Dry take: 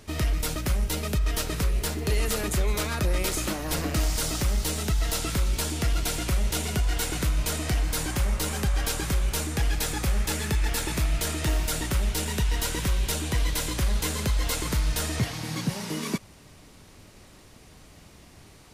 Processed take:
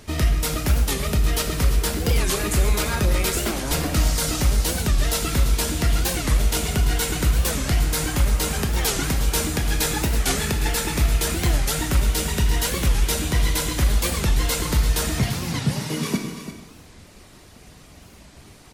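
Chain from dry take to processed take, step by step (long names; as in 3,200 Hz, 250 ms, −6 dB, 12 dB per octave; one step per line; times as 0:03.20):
reverb reduction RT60 0.76 s
0:08.59–0:10.71: compressor whose output falls as the input rises −26 dBFS
single-tap delay 341 ms −11.5 dB
reverb whose tail is shaped and stops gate 440 ms falling, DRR 3.5 dB
wow of a warped record 45 rpm, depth 250 cents
level +4.5 dB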